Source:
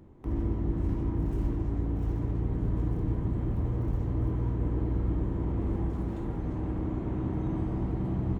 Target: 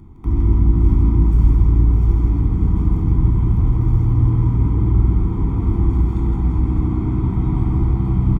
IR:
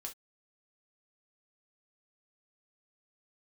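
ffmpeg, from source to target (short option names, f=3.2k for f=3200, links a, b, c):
-filter_complex "[0:a]lowshelf=f=95:g=6.5,aecho=1:1:0.9:0.94,asplit=2[a][b];[b]aecho=0:1:161|605:0.596|0.355[c];[a][c]amix=inputs=2:normalize=0,volume=4dB"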